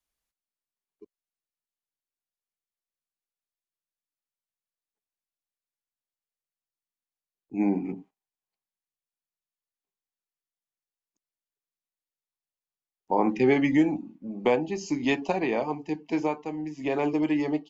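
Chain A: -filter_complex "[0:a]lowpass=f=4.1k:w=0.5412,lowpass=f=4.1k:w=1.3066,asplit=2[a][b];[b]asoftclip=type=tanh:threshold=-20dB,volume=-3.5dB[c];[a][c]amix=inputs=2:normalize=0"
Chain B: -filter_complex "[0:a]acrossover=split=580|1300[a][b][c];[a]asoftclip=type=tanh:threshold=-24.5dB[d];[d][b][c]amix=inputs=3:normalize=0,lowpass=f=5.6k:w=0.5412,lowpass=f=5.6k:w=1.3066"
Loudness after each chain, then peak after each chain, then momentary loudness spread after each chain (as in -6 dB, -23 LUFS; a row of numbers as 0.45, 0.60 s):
-23.5, -29.5 LUFS; -9.0, -13.5 dBFS; 11, 9 LU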